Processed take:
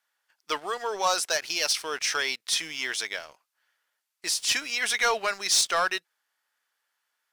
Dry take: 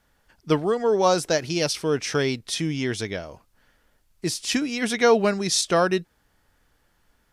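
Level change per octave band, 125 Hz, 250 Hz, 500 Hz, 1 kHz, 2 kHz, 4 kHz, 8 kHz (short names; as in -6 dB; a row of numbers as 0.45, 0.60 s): under -25 dB, -21.0 dB, -11.5 dB, -2.5 dB, +2.0 dB, +2.0 dB, +2.0 dB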